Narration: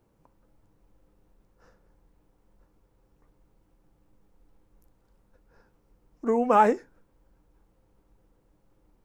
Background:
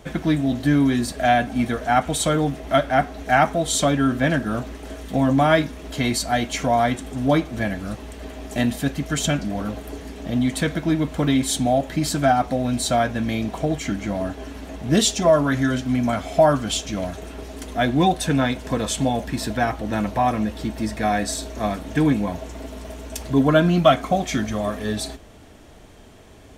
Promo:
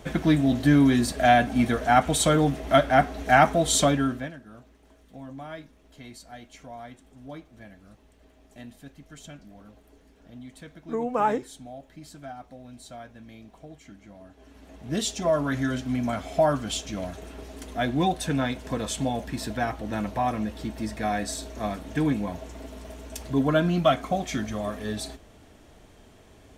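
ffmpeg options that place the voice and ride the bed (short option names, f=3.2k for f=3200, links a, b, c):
-filter_complex "[0:a]adelay=4650,volume=-4.5dB[a];[1:a]volume=16dB,afade=t=out:st=3.79:d=0.53:silence=0.0794328,afade=t=in:st=14.29:d=1.26:silence=0.149624[b];[a][b]amix=inputs=2:normalize=0"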